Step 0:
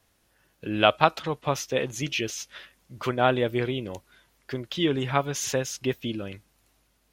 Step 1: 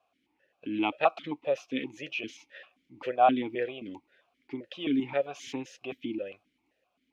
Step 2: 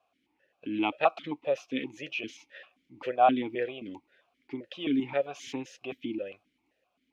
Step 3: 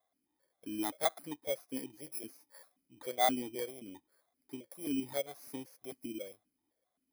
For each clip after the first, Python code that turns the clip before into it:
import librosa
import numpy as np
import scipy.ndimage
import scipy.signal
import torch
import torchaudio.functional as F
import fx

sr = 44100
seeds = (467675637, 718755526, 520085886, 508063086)

y1 = fx.vowel_held(x, sr, hz=7.6)
y1 = F.gain(torch.from_numpy(y1), 6.5).numpy()
y2 = y1
y3 = fx.bit_reversed(y2, sr, seeds[0], block=16)
y3 = F.gain(torch.from_numpy(y3), -7.5).numpy()